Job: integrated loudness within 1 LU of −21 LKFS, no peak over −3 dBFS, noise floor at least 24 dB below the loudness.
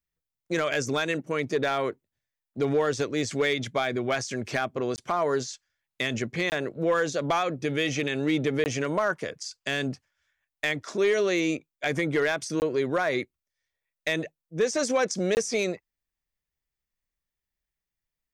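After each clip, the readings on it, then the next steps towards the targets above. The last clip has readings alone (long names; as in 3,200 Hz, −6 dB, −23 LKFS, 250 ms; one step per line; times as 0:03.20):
share of clipped samples 0.3%; peaks flattened at −16.5 dBFS; number of dropouts 5; longest dropout 19 ms; integrated loudness −27.5 LKFS; sample peak −16.5 dBFS; target loudness −21.0 LKFS
→ clipped peaks rebuilt −16.5 dBFS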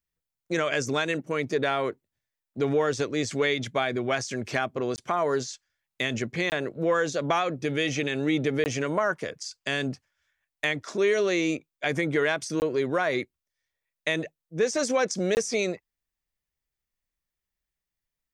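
share of clipped samples 0.0%; number of dropouts 5; longest dropout 19 ms
→ repair the gap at 0:04.96/0:06.50/0:08.64/0:12.60/0:15.35, 19 ms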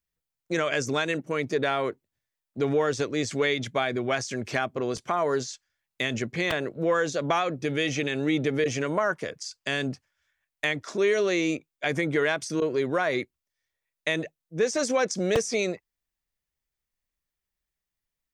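number of dropouts 0; integrated loudness −27.0 LKFS; sample peak −10.0 dBFS; target loudness −21.0 LKFS
→ level +6 dB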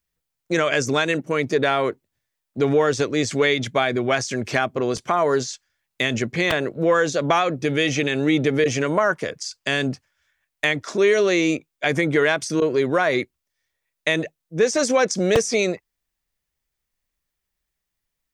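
integrated loudness −21.0 LKFS; sample peak −4.0 dBFS; background noise floor −81 dBFS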